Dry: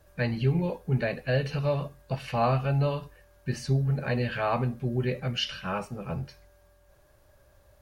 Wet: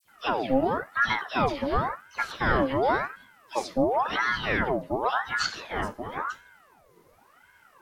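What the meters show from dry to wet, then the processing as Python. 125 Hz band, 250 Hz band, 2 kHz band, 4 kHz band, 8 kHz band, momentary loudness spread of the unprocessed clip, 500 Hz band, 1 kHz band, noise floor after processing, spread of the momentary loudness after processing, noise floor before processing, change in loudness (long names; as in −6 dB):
−11.5 dB, +1.0 dB, +8.5 dB, +1.0 dB, +4.5 dB, 10 LU, +2.0 dB, +7.5 dB, −59 dBFS, 9 LU, −61 dBFS, +1.5 dB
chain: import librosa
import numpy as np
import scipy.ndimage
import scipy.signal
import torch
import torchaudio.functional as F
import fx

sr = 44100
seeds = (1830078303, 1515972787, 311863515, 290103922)

y = fx.dispersion(x, sr, late='lows', ms=80.0, hz=2100.0)
y = fx.ring_lfo(y, sr, carrier_hz=980.0, swing_pct=60, hz=0.93)
y = y * librosa.db_to_amplitude(4.0)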